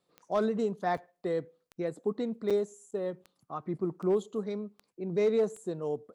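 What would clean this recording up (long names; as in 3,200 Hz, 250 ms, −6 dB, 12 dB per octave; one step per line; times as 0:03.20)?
clipped peaks rebuilt −20 dBFS
click removal
repair the gap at 0:00.97/0:02.50/0:02.91/0:03.24, 6 ms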